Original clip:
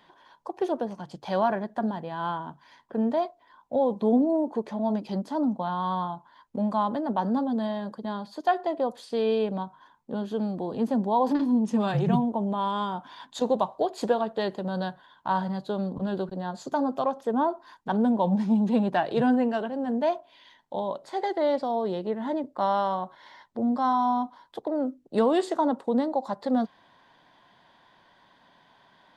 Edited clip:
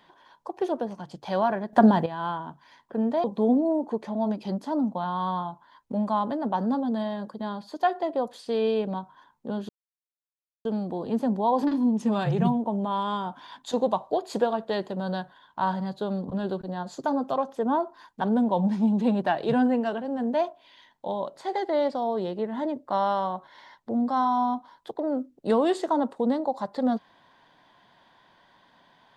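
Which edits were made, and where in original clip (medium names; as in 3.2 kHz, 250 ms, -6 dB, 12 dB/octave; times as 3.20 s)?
1.73–2.06 s: gain +11.5 dB
3.24–3.88 s: delete
10.33 s: insert silence 0.96 s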